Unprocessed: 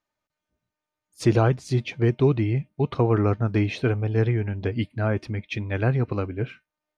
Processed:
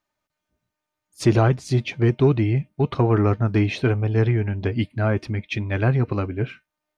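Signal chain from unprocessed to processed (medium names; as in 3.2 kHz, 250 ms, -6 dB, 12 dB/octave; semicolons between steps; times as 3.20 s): band-stop 480 Hz, Q 12; in parallel at -6 dB: saturation -16.5 dBFS, distortion -13 dB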